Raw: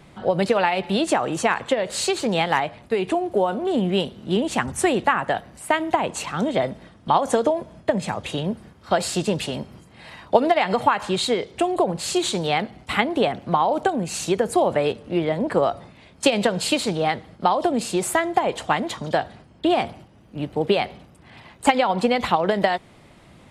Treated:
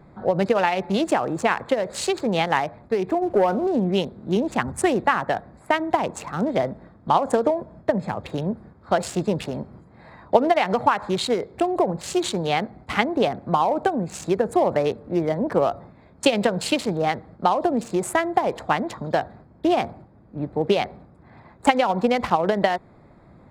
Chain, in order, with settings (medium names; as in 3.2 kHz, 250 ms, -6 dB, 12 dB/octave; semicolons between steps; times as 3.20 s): local Wiener filter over 15 samples; 3.22–3.67 s: waveshaping leveller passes 1